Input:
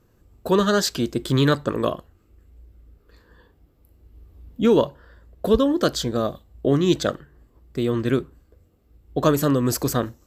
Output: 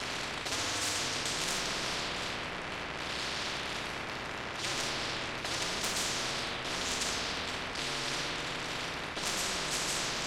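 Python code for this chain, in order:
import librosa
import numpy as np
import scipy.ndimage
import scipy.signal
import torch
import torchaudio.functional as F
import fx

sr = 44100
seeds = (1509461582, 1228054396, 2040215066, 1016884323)

p1 = fx.delta_mod(x, sr, bps=64000, step_db=-33.5)
p2 = scipy.signal.sosfilt(scipy.signal.butter(2, 3900.0, 'lowpass', fs=sr, output='sos'), p1)
p3 = fx.level_steps(p2, sr, step_db=17)
p4 = p2 + (p3 * librosa.db_to_amplitude(-2.0))
p5 = scipy.signal.sosfilt(scipy.signal.bessel(8, 310.0, 'highpass', norm='mag', fs=sr, output='sos'), p4)
p6 = p5 * np.sin(2.0 * np.pi * 100.0 * np.arange(len(p5)) / sr)
p7 = 10.0 ** (-18.5 / 20.0) * np.tanh(p6 / 10.0 ** (-18.5 / 20.0))
p8 = fx.room_shoebox(p7, sr, seeds[0], volume_m3=1200.0, walls='mixed', distance_m=3.0)
p9 = fx.spectral_comp(p8, sr, ratio=10.0)
y = p9 * librosa.db_to_amplitude(-8.5)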